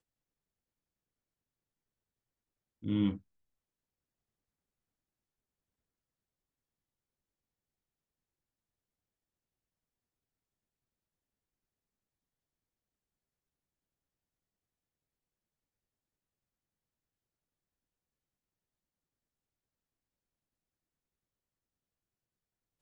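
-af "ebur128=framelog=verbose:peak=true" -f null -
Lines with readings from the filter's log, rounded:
Integrated loudness:
  I:         -33.1 LUFS
  Threshold: -44.5 LUFS
Loudness range:
  LRA:         2.3 LU
  Threshold: -61.1 LUFS
  LRA low:   -43.2 LUFS
  LRA high:  -40.8 LUFS
True peak:
  Peak:      -18.9 dBFS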